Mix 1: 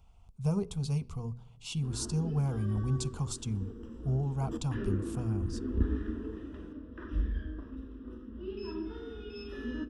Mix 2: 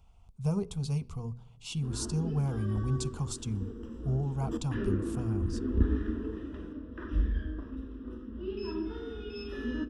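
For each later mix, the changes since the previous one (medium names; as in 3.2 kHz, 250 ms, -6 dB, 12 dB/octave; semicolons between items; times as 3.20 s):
background +3.0 dB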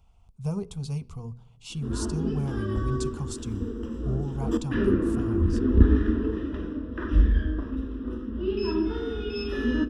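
background +9.0 dB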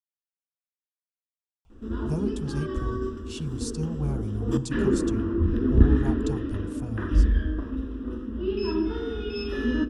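speech: entry +1.65 s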